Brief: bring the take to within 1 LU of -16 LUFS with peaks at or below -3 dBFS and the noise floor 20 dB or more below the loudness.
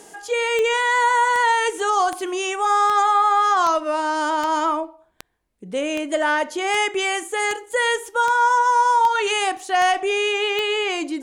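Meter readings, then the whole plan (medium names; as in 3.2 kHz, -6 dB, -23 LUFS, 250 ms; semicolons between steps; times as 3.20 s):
clicks found 14; loudness -19.5 LUFS; peak level -7.5 dBFS; loudness target -16.0 LUFS
-> de-click; trim +3.5 dB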